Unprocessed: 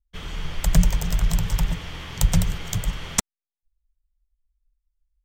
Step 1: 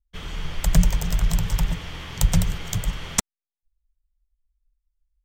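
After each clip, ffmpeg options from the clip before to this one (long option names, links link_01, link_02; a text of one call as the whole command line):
ffmpeg -i in.wav -af anull out.wav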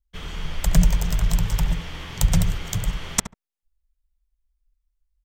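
ffmpeg -i in.wav -filter_complex "[0:a]asplit=2[link_01][link_02];[link_02]adelay=70,lowpass=frequency=1300:poles=1,volume=-9.5dB,asplit=2[link_03][link_04];[link_04]adelay=70,lowpass=frequency=1300:poles=1,volume=0.17[link_05];[link_01][link_03][link_05]amix=inputs=3:normalize=0" out.wav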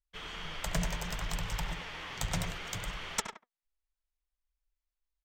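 ffmpeg -i in.wav -filter_complex "[0:a]flanger=delay=0.3:depth=8.8:regen=73:speed=0.66:shape=triangular,asplit=2[link_01][link_02];[link_02]highpass=frequency=720:poles=1,volume=15dB,asoftclip=type=tanh:threshold=-6dB[link_03];[link_01][link_03]amix=inputs=2:normalize=0,lowpass=frequency=3800:poles=1,volume=-6dB,asplit=2[link_04][link_05];[link_05]adelay=100,highpass=300,lowpass=3400,asoftclip=type=hard:threshold=-18.5dB,volume=-7dB[link_06];[link_04][link_06]amix=inputs=2:normalize=0,volume=-8dB" out.wav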